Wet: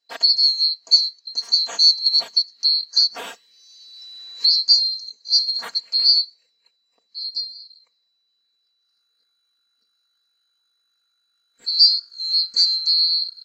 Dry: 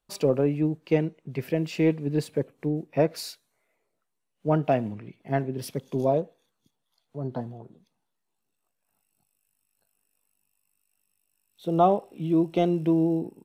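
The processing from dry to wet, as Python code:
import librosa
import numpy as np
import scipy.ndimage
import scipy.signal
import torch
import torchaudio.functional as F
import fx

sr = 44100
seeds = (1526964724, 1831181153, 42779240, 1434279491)

y = fx.band_swap(x, sr, width_hz=4000)
y = fx.highpass(y, sr, hz=560.0, slope=6)
y = fx.high_shelf(y, sr, hz=8800.0, db=8.5)
y = y + 0.85 * np.pad(y, (int(4.3 * sr / 1000.0), 0))[:len(y)]
y = fx.rider(y, sr, range_db=10, speed_s=2.0)
y = fx.air_absorb(y, sr, metres=160.0)
y = fx.band_squash(y, sr, depth_pct=100, at=(2.06, 4.62))
y = y * 10.0 ** (8.5 / 20.0)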